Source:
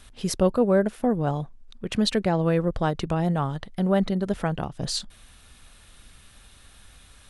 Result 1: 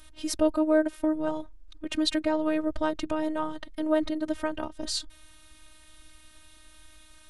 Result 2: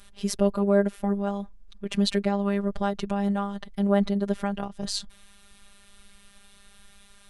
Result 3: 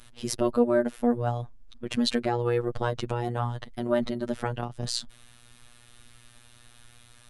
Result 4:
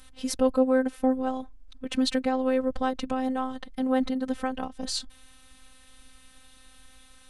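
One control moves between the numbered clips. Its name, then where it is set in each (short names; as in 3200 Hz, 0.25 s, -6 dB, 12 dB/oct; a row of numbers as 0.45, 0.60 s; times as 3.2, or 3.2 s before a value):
robotiser, frequency: 310, 200, 120, 260 Hz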